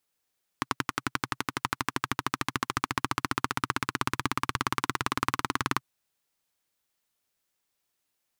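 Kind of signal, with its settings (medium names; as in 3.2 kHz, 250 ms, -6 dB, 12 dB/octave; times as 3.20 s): single-cylinder engine model, changing speed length 5.19 s, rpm 1300, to 2300, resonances 130/270/1100 Hz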